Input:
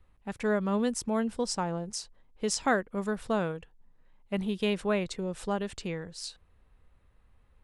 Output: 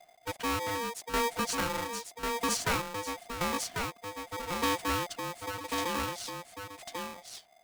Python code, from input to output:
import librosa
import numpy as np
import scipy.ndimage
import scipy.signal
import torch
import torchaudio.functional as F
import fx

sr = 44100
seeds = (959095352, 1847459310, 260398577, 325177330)

p1 = 10.0 ** (-26.5 / 20.0) * (np.abs((x / 10.0 ** (-26.5 / 20.0) + 3.0) % 4.0 - 2.0) - 1.0)
p2 = x + (p1 * 10.0 ** (-4.0 / 20.0))
p3 = fx.tremolo_shape(p2, sr, shape='saw_down', hz=0.88, depth_pct=75)
p4 = p3 + fx.echo_single(p3, sr, ms=1095, db=-4.0, dry=0)
p5 = p4 * np.sign(np.sin(2.0 * np.pi * 700.0 * np.arange(len(p4)) / sr))
y = p5 * 10.0 ** (-2.5 / 20.0)